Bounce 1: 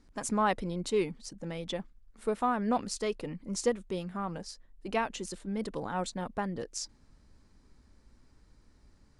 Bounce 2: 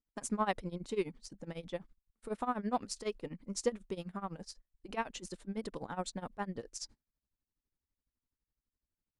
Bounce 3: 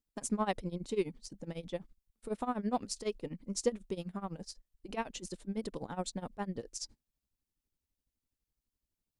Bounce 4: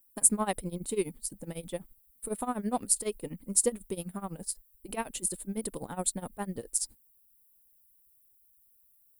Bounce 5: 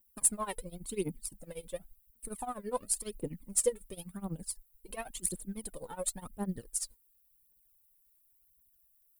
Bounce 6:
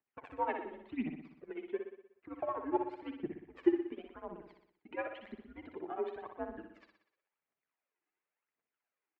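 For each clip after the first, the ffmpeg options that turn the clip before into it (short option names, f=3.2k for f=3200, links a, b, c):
-af "agate=range=-26dB:threshold=-50dB:ratio=16:detection=peak,tremolo=f=12:d=0.89,volume=-2dB"
-af "equalizer=f=1.4k:t=o:w=1.7:g=-6,volume=2.5dB"
-af "aexciter=amount=12.4:drive=7.9:freq=8.7k,volume=2dB"
-af "aphaser=in_gain=1:out_gain=1:delay=2.3:decay=0.74:speed=0.93:type=triangular,volume=-7.5dB"
-filter_complex "[0:a]highpass=f=420:t=q:w=0.5412,highpass=f=420:t=q:w=1.307,lowpass=f=2.6k:t=q:w=0.5176,lowpass=f=2.6k:t=q:w=0.7071,lowpass=f=2.6k:t=q:w=1.932,afreqshift=-140,asplit=2[a][b];[b]aecho=0:1:61|122|183|244|305|366|427:0.473|0.265|0.148|0.0831|0.0465|0.0261|0.0146[c];[a][c]amix=inputs=2:normalize=0,volume=3dB"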